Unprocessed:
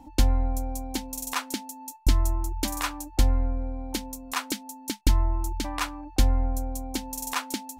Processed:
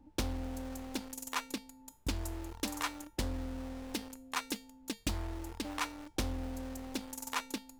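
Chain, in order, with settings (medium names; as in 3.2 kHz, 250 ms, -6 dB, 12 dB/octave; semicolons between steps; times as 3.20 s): local Wiener filter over 41 samples; high-pass 85 Hz 12 dB/octave; bass shelf 220 Hz -2.5 dB; band-stop 720 Hz, Q 18; in parallel at -11 dB: companded quantiser 2-bit; on the sum: feedback comb 460 Hz, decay 0.34 s, harmonics all, mix 70%; added noise brown -68 dBFS; loudspeaker Doppler distortion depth 0.55 ms; trim +2 dB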